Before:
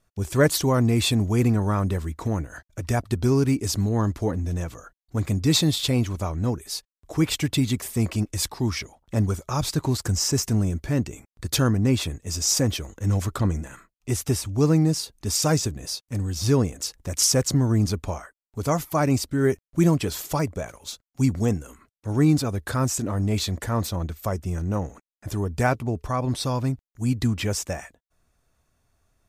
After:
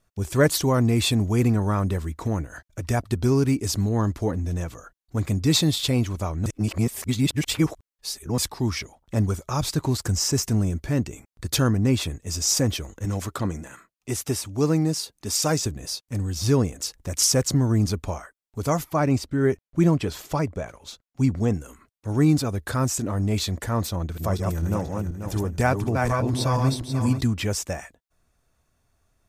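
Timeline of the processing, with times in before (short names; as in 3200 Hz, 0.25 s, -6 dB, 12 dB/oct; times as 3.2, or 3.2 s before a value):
6.46–8.38 reverse
13.05–15.66 HPF 180 Hz 6 dB/oct
18.84–21.54 high shelf 5900 Hz -11.5 dB
23.89–27.21 regenerating reverse delay 0.244 s, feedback 50%, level -3 dB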